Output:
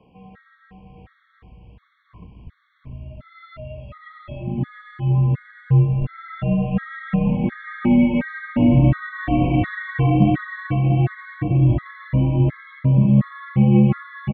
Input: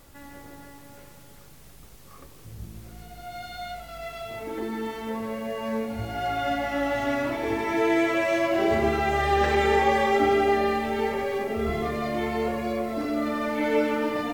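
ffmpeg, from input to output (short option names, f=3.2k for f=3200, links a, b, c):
-filter_complex "[0:a]lowshelf=f=370:g=7.5,highpass=f=190:t=q:w=0.5412,highpass=f=190:t=q:w=1.307,lowpass=f=3.2k:t=q:w=0.5176,lowpass=f=3.2k:t=q:w=0.7071,lowpass=f=3.2k:t=q:w=1.932,afreqshift=-91,asubboost=boost=10.5:cutoff=140,asplit=2[a][b];[b]aecho=0:1:699:0.335[c];[a][c]amix=inputs=2:normalize=0,afftfilt=real='re*gt(sin(2*PI*1.4*pts/sr)*(1-2*mod(floor(b*sr/1024/1100),2)),0)':imag='im*gt(sin(2*PI*1.4*pts/sr)*(1-2*mod(floor(b*sr/1024/1100),2)),0)':win_size=1024:overlap=0.75"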